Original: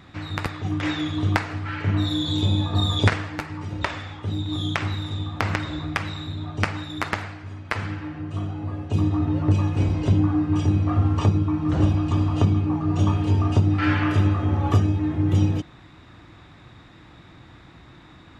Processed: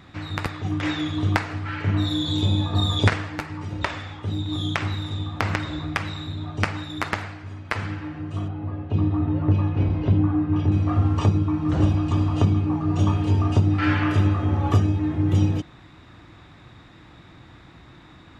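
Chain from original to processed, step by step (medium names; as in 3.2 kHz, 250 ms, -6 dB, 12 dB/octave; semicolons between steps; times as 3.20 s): 8.48–10.72 s: distance through air 260 m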